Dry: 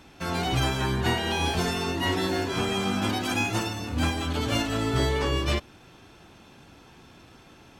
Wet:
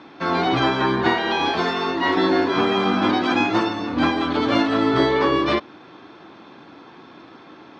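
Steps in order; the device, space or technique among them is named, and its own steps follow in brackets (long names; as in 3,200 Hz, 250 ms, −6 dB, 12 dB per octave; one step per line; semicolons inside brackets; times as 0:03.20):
0:01.08–0:02.17: low-shelf EQ 460 Hz −5.5 dB
kitchen radio (loudspeaker in its box 220–4,100 Hz, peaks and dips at 310 Hz +6 dB, 1,100 Hz +5 dB, 2,800 Hz −8 dB)
level +8 dB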